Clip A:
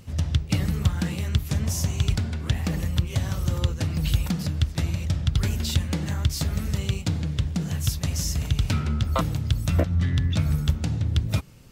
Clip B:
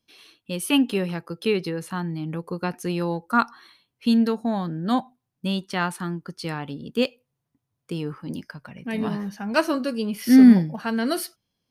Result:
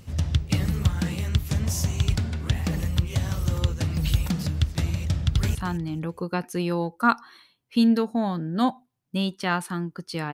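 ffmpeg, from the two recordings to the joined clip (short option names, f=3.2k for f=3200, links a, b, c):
-filter_complex "[0:a]apad=whole_dur=10.33,atrim=end=10.33,atrim=end=5.552[a];[1:a]atrim=start=1.848:end=6.63[b];[a][b]acrossfade=d=0.004:c1=hsin:c2=hsin,asplit=2[c][d];[d]afade=t=in:st=5.13:d=0.01,afade=t=out:st=5.55:d=0.01,aecho=0:1:220|440|660:0.223872|0.0671616|0.0201485[e];[c][e]amix=inputs=2:normalize=0"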